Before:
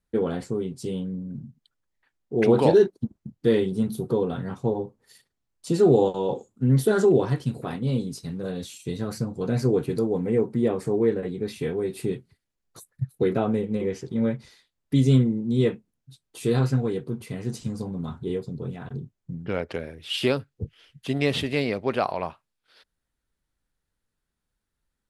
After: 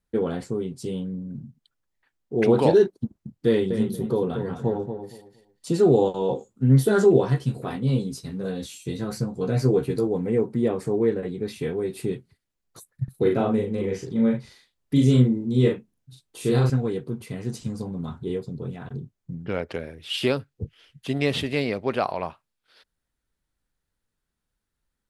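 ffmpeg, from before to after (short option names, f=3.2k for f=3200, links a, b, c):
-filter_complex "[0:a]asettb=1/sr,asplit=3[a][b][c];[a]atrim=end=3.474[d];[b]atrim=start=3.47:end=5.69,asetpts=PTS-STARTPTS,afade=t=in:d=0.004:c=qsin,afade=t=out:st=2.216:d=0.004:c=qsin,asplit=2[e][f];[f]adelay=233,lowpass=f=3.1k:p=1,volume=-8dB,asplit=2[g][h];[h]adelay=233,lowpass=f=3.1k:p=1,volume=0.22,asplit=2[i][j];[j]adelay=233,lowpass=f=3.1k:p=1,volume=0.22[k];[e][g][i][k]amix=inputs=4:normalize=0,atrim=end_sample=97902[l];[c]atrim=start=5.686[m];[d][l]acrossfade=d=0.004:c1=hsin:c2=qsin[n];[n][m]acrossfade=d=0.004:c1=qsin:c2=hsin,asettb=1/sr,asplit=3[o][p][q];[o]atrim=end=6.204[r];[p]atrim=start=6.2:end=10.08,asetpts=PTS-STARTPTS,afade=t=in:d=0.004:c=qsin,afade=t=out:st=3.876:d=0.004:c=qsin,asplit=2[s][t];[t]adelay=15,volume=-6dB[u];[s][u]amix=inputs=2:normalize=0,atrim=end_sample=171108[v];[q]atrim=start=10.076[w];[r][v]acrossfade=d=0.004:c1=hsin:c2=qsin[x];[x][w]acrossfade=d=0.004:c1=qsin:c2=hsin,asettb=1/sr,asplit=3[y][z][aa];[y]atrim=end=13.044[ab];[z]atrim=start=13.04:end=16.7,asetpts=PTS-STARTPTS,afade=t=in:d=0.004:c=qsin,afade=t=out:st=3.656:d=0.004:c=qsin,asplit=2[ac][ad];[ad]adelay=40,volume=-3dB[ae];[ac][ae]amix=inputs=2:normalize=0,atrim=end_sample=161406[af];[aa]atrim=start=16.696[ag];[ab][af]acrossfade=d=0.004:c1=hsin:c2=qsin[ah];[ah][ag]acrossfade=d=0.004:c1=qsin:c2=hsin"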